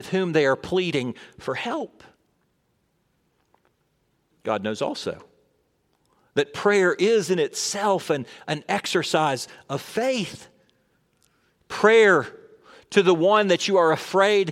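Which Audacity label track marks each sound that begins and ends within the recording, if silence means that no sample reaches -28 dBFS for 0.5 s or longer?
4.460000	5.130000	sound
6.370000	10.350000	sound
11.710000	12.260000	sound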